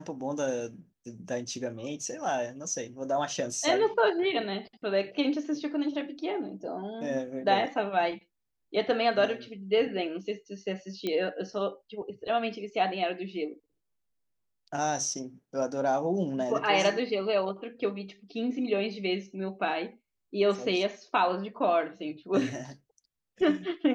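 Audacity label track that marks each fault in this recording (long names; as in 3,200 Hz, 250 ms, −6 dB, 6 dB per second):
11.070000	11.070000	click −18 dBFS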